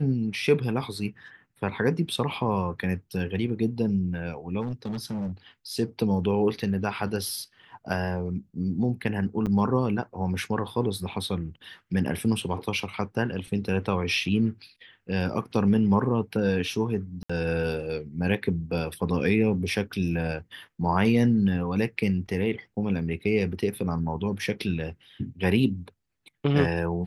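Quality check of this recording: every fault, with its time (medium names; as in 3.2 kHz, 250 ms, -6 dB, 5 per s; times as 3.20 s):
4.61–5.32 s: clipped -27.5 dBFS
9.46–9.47 s: dropout 8 ms
17.23–17.30 s: dropout 65 ms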